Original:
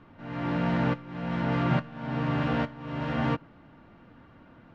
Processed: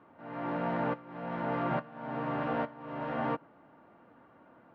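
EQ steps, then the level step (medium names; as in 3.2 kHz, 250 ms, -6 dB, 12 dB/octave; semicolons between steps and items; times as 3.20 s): band-pass filter 720 Hz, Q 0.82; 0.0 dB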